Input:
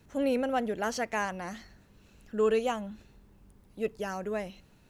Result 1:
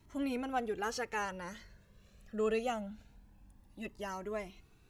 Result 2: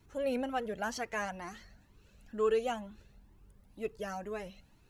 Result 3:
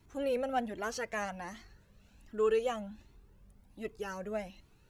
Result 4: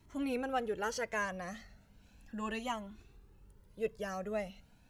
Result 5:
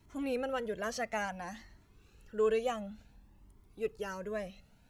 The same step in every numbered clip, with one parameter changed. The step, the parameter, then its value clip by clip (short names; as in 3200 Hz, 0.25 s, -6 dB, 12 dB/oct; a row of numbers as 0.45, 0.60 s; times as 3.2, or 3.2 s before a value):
cascading flanger, rate: 0.24, 2.1, 1.3, 0.37, 0.57 Hz